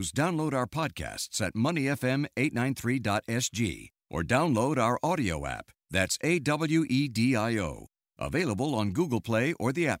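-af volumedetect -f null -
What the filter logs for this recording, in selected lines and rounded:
mean_volume: -28.6 dB
max_volume: -10.7 dB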